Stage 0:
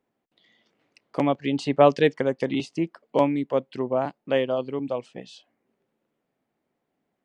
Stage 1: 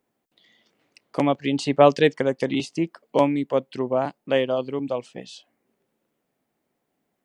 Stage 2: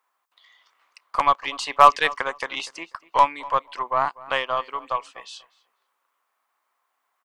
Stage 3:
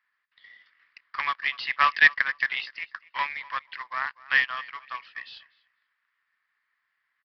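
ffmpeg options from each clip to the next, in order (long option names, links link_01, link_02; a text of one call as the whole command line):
ffmpeg -i in.wav -af "highshelf=frequency=5800:gain=9,volume=1.5dB" out.wav
ffmpeg -i in.wav -filter_complex "[0:a]highpass=frequency=1100:width_type=q:width=4.9,aeval=exprs='0.708*(cos(1*acos(clip(val(0)/0.708,-1,1)))-cos(1*PI/2))+0.0178*(cos(8*acos(clip(val(0)/0.708,-1,1)))-cos(8*PI/2))':channel_layout=same,asplit=2[link_01][link_02];[link_02]adelay=244,lowpass=frequency=3200:poles=1,volume=-20dB,asplit=2[link_03][link_04];[link_04]adelay=244,lowpass=frequency=3200:poles=1,volume=0.2[link_05];[link_01][link_03][link_05]amix=inputs=3:normalize=0,volume=1.5dB" out.wav
ffmpeg -i in.wav -af "highpass=frequency=1800:width_type=q:width=5.8,aresample=11025,acrusher=bits=4:mode=log:mix=0:aa=0.000001,aresample=44100,volume=-6dB" out.wav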